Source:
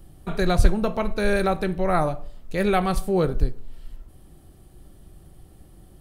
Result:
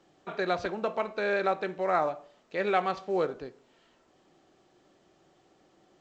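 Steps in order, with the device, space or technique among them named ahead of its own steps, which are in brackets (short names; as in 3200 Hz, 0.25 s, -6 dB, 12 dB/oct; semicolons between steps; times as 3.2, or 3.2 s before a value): telephone (BPF 400–3400 Hz; gain -3 dB; A-law 128 kbps 16000 Hz)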